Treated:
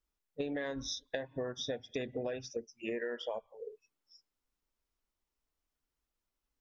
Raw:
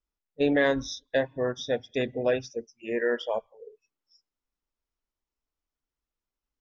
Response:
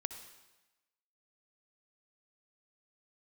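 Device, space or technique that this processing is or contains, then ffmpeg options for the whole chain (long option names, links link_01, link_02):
serial compression, leveller first: -af "acompressor=threshold=-27dB:ratio=2.5,acompressor=threshold=-36dB:ratio=6,volume=1.5dB"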